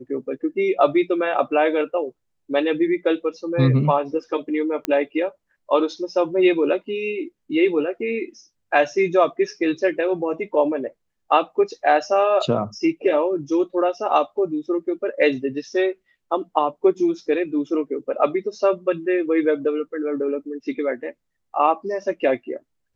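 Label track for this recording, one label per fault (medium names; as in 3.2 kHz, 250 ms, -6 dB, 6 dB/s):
4.850000	4.850000	pop -9 dBFS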